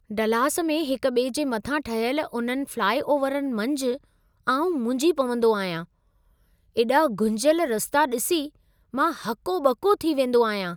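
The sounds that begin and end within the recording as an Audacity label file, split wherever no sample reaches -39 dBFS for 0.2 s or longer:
4.470000	5.840000	sound
6.760000	8.480000	sound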